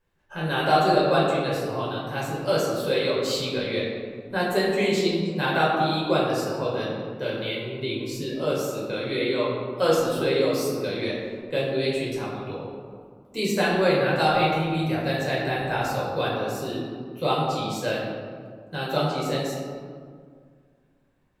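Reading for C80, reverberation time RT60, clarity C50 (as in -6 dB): 2.0 dB, 2.0 s, 0.0 dB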